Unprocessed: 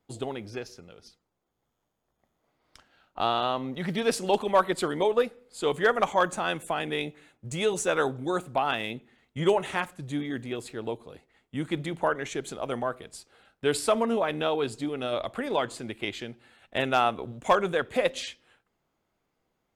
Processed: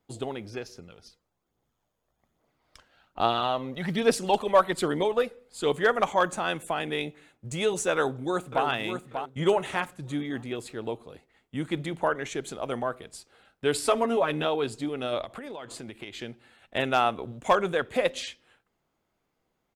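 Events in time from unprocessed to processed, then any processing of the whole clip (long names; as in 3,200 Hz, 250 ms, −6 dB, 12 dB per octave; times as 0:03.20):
0:00.75–0:05.72: phase shifter 1.2 Hz, delay 2.1 ms, feedback 35%
0:07.93–0:08.66: delay throw 590 ms, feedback 30%, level −7 dB
0:13.84–0:14.45: comb filter 7.2 ms, depth 67%
0:15.24–0:16.19: downward compressor 10 to 1, threshold −35 dBFS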